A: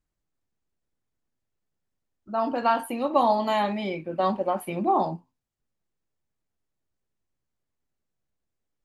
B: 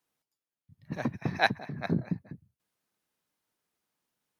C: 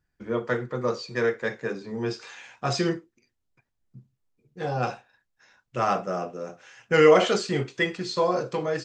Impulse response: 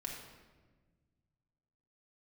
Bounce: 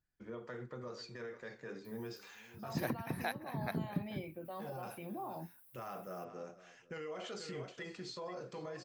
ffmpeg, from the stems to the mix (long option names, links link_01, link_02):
-filter_complex "[0:a]adelay=300,volume=-12dB[link_01];[1:a]acompressor=threshold=-30dB:ratio=6,aexciter=amount=13.7:drive=5.4:freq=9300,adelay=1850,volume=0.5dB[link_02];[2:a]volume=-11.5dB,asplit=2[link_03][link_04];[link_04]volume=-21.5dB[link_05];[link_01][link_03]amix=inputs=2:normalize=0,alimiter=level_in=12.5dB:limit=-24dB:level=0:latency=1:release=79,volume=-12.5dB,volume=0dB[link_06];[link_05]aecho=0:1:482:1[link_07];[link_02][link_06][link_07]amix=inputs=3:normalize=0,alimiter=limit=-23.5dB:level=0:latency=1:release=436"